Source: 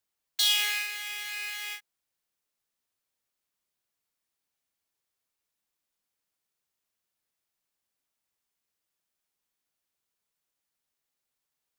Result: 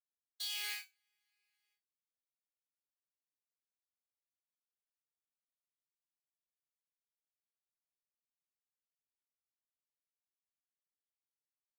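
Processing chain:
noise gate −27 dBFS, range −46 dB
reversed playback
downward compressor 10 to 1, threshold −36 dBFS, peak gain reduction 16 dB
reversed playback
tuned comb filter 380 Hz, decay 0.21 s, harmonics all, mix 90%
level +13 dB

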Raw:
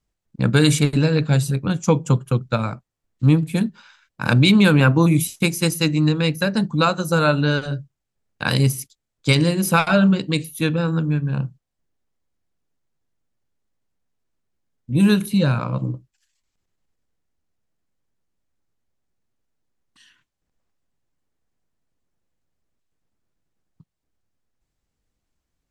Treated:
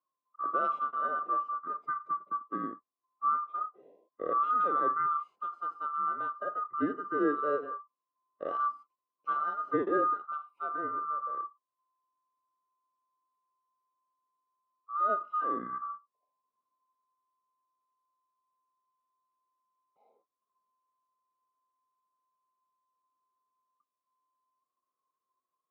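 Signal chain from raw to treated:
neighbouring bands swapped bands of 1,000 Hz
harmonic and percussive parts rebalanced percussive −15 dB
flat-topped band-pass 410 Hz, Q 0.79
level −1 dB

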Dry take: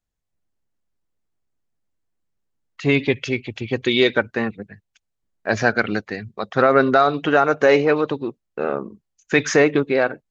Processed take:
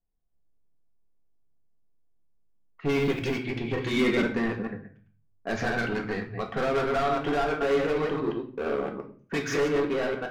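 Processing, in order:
delay that plays each chunk backwards 114 ms, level −5 dB
0:06.92–0:07.61: transient designer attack 0 dB, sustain −6 dB
in parallel at 0 dB: downward compressor, threshold −22 dBFS, peak gain reduction 12.5 dB
on the sum: low-pass that shuts in the quiet parts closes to 840 Hz, open at −13.5 dBFS
hard clipping −16.5 dBFS, distortion −6 dB
high-shelf EQ 3,800 Hz −9 dB
0:02.90–0:03.37: floating-point word with a short mantissa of 4 bits
0:03.96–0:04.37: hollow resonant body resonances 210/2,100 Hz, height 16 dB → 13 dB
on a send at −2 dB: convolution reverb RT60 0.45 s, pre-delay 3 ms
on the sum: level −9 dB

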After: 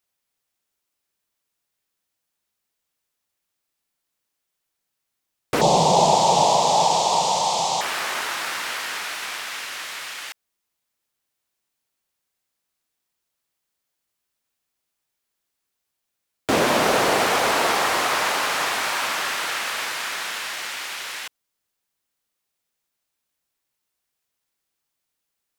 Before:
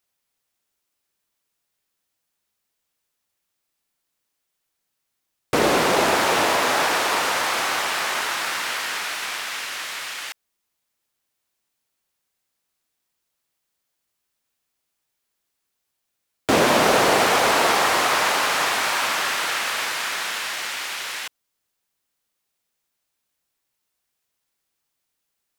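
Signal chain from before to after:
0:05.61–0:07.81: drawn EQ curve 100 Hz 0 dB, 160 Hz +14 dB, 280 Hz −6 dB, 900 Hz +11 dB, 1,500 Hz −25 dB, 3,400 Hz +3 dB, 7,300 Hz +7 dB, 12,000 Hz −14 dB
level −2 dB

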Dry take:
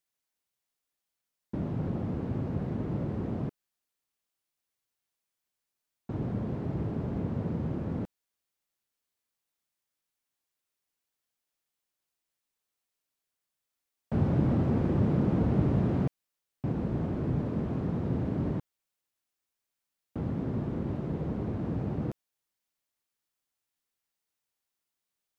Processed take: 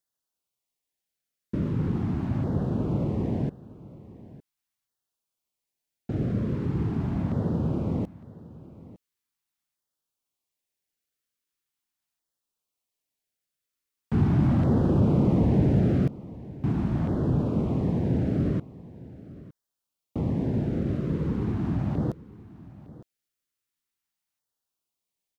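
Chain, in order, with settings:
leveller curve on the samples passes 1
auto-filter notch saw down 0.41 Hz 410–2,600 Hz
on a send: single-tap delay 909 ms −19 dB
on the sum: level +2 dB

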